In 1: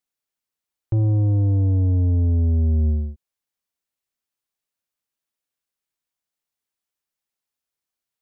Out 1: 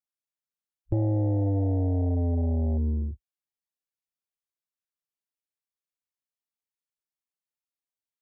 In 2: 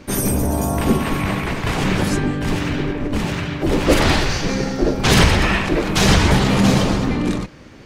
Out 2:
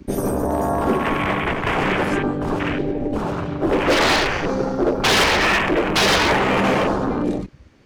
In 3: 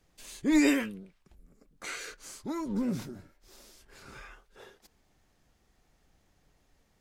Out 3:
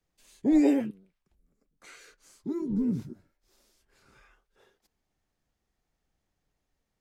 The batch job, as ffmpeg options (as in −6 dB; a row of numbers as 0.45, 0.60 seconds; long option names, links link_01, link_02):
-filter_complex "[0:a]afwtdn=0.0501,acrossover=split=320|900[link_01][link_02][link_03];[link_01]acompressor=threshold=-30dB:ratio=10[link_04];[link_04][link_02][link_03]amix=inputs=3:normalize=0,volume=17dB,asoftclip=hard,volume=-17dB,volume=4.5dB"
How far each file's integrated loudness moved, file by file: −7.0, −1.0, +3.5 LU